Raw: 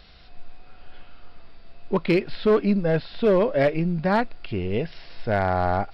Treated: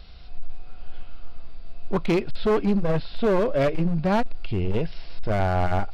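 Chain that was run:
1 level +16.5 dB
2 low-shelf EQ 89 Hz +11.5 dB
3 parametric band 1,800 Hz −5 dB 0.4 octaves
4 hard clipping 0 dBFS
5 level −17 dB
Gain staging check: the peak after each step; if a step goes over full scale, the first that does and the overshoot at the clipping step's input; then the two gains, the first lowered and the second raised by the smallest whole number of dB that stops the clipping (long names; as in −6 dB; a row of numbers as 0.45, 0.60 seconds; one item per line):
+3.0, +9.0, +9.0, 0.0, −17.0 dBFS
step 1, 9.0 dB
step 1 +7.5 dB, step 5 −8 dB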